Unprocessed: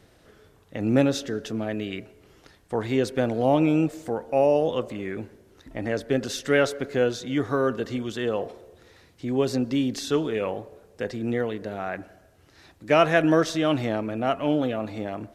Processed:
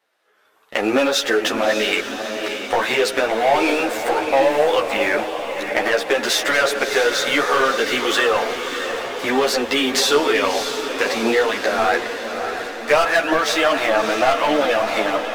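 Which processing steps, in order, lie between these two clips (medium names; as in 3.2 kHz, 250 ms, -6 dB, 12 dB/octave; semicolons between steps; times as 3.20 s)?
high-pass 850 Hz 12 dB/octave; peaking EQ 7 kHz -8 dB 2.1 oct; level rider gain up to 16 dB; waveshaping leveller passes 3; compression 4:1, threshold -17 dBFS, peak gain reduction 10.5 dB; echo that smears into a reverb 633 ms, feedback 60%, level -7.5 dB; three-phase chorus; trim +3.5 dB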